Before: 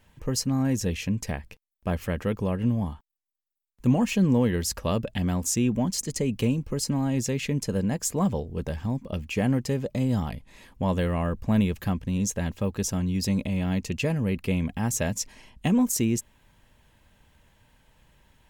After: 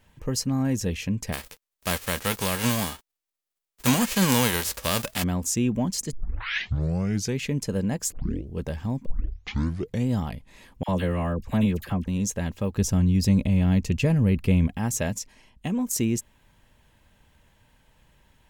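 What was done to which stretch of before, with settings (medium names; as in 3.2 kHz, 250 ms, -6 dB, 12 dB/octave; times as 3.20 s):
1.32–5.22 s: formants flattened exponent 0.3
6.13 s: tape start 1.26 s
8.12 s: tape start 0.40 s
9.06 s: tape start 1.02 s
10.83–12.08 s: phase dispersion lows, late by 53 ms, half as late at 1.2 kHz
12.77–14.67 s: bass shelf 160 Hz +11.5 dB
15.19–15.91 s: gain -5 dB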